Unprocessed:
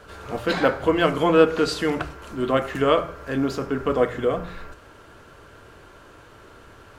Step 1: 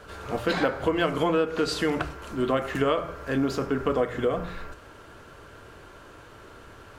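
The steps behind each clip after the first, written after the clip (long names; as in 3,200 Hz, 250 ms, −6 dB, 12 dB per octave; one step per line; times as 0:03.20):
downward compressor 6 to 1, threshold −20 dBFS, peak gain reduction 11 dB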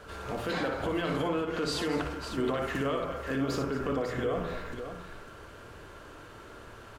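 brickwall limiter −21 dBFS, peak gain reduction 9.5 dB
on a send: multi-tap delay 59/222/549 ms −6.5/−14.5/−9 dB
on the sum: level −2 dB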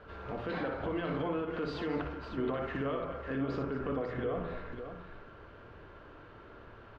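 high-frequency loss of the air 310 metres
level −3 dB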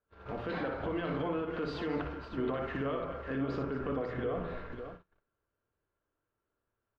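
noise gate −43 dBFS, range −34 dB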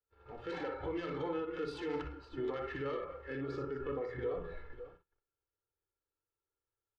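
phase distortion by the signal itself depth 0.096 ms
comb filter 2.3 ms, depth 67%
noise reduction from a noise print of the clip's start 8 dB
level −5 dB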